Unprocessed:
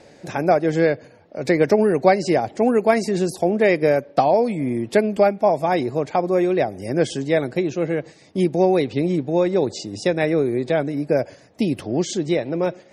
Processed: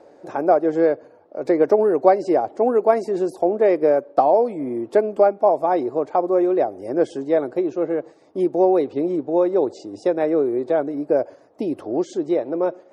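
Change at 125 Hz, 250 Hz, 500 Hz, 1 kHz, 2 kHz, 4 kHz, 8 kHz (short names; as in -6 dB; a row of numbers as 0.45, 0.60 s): -13.0 dB, -1.5 dB, +1.0 dB, +1.0 dB, -9.0 dB, under -10 dB, under -10 dB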